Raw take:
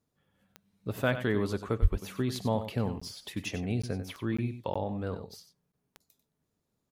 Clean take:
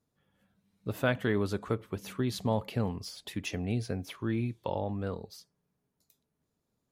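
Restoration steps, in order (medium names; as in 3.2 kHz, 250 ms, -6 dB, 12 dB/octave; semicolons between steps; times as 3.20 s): de-click; 1.81–1.93 s: high-pass 140 Hz 24 dB/octave; interpolate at 3.00/3.82/4.37/4.74/5.72 s, 15 ms; inverse comb 94 ms -11 dB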